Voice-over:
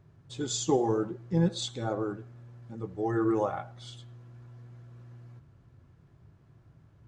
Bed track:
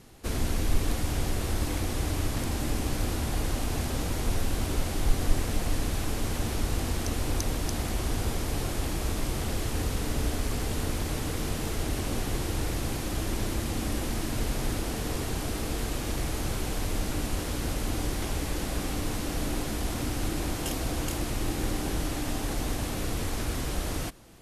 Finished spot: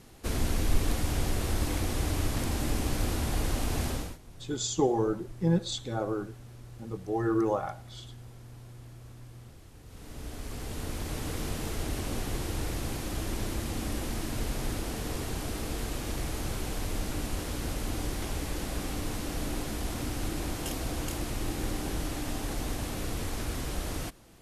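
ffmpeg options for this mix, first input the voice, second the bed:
ffmpeg -i stem1.wav -i stem2.wav -filter_complex "[0:a]adelay=4100,volume=0dB[link_01];[1:a]volume=20dB,afade=type=out:start_time=3.88:duration=0.3:silence=0.0707946,afade=type=in:start_time=9.84:duration=1.49:silence=0.0944061[link_02];[link_01][link_02]amix=inputs=2:normalize=0" out.wav

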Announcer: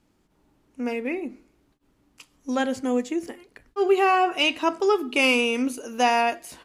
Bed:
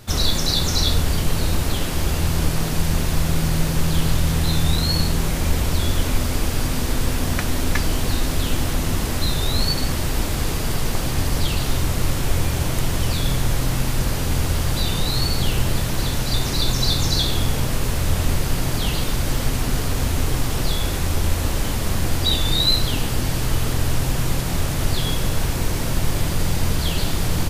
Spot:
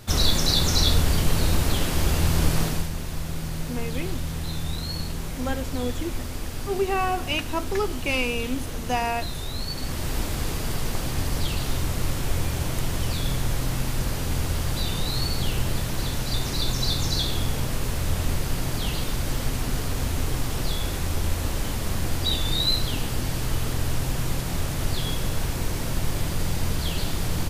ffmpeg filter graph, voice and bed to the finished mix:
ffmpeg -i stem1.wav -i stem2.wav -filter_complex "[0:a]adelay=2900,volume=-5.5dB[link_01];[1:a]volume=4.5dB,afade=type=out:start_time=2.61:duration=0.29:silence=0.334965,afade=type=in:start_time=9.68:duration=0.44:silence=0.530884[link_02];[link_01][link_02]amix=inputs=2:normalize=0" out.wav

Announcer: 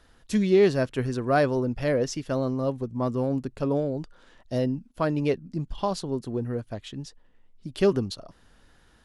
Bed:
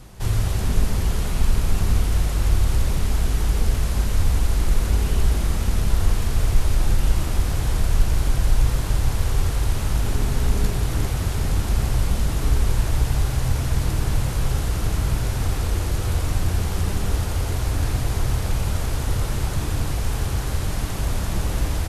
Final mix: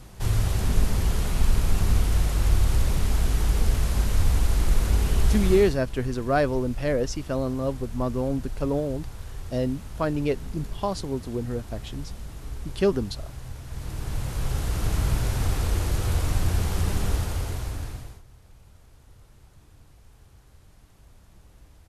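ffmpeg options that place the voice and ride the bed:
ffmpeg -i stem1.wav -i stem2.wav -filter_complex "[0:a]adelay=5000,volume=-0.5dB[link_01];[1:a]volume=12.5dB,afade=type=out:start_time=5.53:duration=0.25:silence=0.188365,afade=type=in:start_time=13.65:duration=1.35:silence=0.188365,afade=type=out:start_time=17.03:duration=1.19:silence=0.0421697[link_02];[link_01][link_02]amix=inputs=2:normalize=0" out.wav

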